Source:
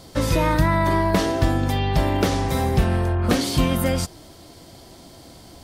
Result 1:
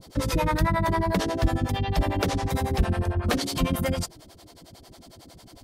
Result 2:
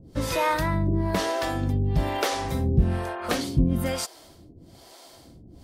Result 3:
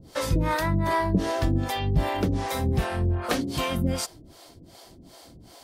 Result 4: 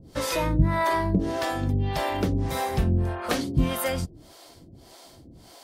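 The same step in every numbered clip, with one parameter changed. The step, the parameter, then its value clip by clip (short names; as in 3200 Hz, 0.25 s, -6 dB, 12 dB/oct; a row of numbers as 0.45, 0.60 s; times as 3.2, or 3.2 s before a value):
harmonic tremolo, rate: 11, 1.1, 2.6, 1.7 Hz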